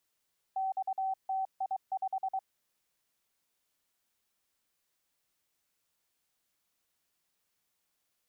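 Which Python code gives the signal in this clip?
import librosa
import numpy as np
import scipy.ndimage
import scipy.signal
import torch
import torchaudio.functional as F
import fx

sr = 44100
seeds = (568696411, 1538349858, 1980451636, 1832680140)

y = fx.morse(sr, text='XTI5', wpm=23, hz=766.0, level_db=-29.5)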